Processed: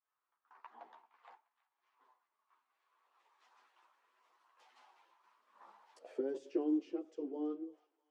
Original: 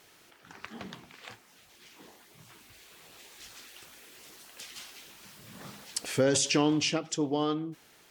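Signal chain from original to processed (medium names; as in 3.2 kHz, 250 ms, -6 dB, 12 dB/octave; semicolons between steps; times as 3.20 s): high-pass 270 Hz 24 dB/octave; expander -47 dBFS; auto-wah 350–1100 Hz, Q 5.2, down, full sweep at -28.5 dBFS; chorus voices 6, 0.41 Hz, delay 12 ms, depth 4.1 ms; on a send: feedback echo behind a high-pass 325 ms, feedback 55%, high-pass 1.5 kHz, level -18 dB; on the sum: trim +2.5 dB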